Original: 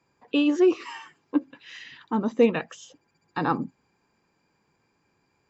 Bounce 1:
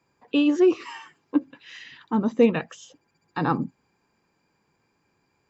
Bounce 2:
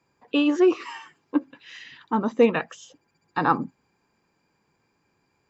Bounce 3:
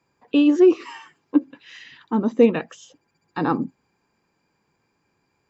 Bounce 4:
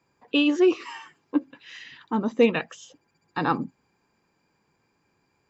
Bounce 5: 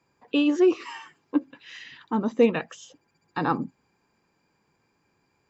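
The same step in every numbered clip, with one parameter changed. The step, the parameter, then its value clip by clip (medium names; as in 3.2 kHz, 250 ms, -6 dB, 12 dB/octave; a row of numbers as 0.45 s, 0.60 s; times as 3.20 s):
dynamic bell, frequency: 120 Hz, 1.2 kHz, 300 Hz, 3.1 kHz, 9 kHz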